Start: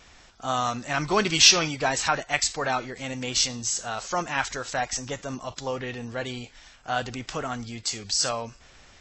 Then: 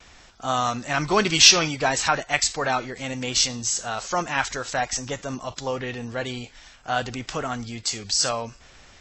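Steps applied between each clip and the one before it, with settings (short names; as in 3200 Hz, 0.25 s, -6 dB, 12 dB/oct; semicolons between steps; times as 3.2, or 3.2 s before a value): gate with hold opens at -47 dBFS; gain +2.5 dB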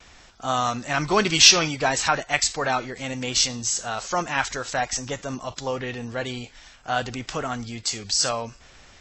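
nothing audible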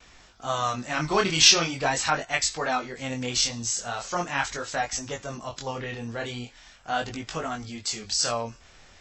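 chorus 0.41 Hz, delay 18.5 ms, depth 7.6 ms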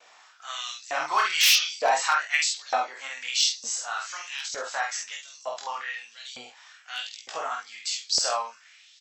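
doubler 48 ms -3 dB; wavefolder -12 dBFS; LFO high-pass saw up 1.1 Hz 540–5200 Hz; gain -3.5 dB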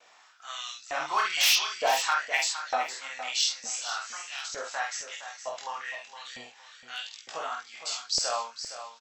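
low shelf 180 Hz +8.5 dB; on a send: feedback echo 0.464 s, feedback 26%, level -11 dB; on the sum: gain -3.5 dB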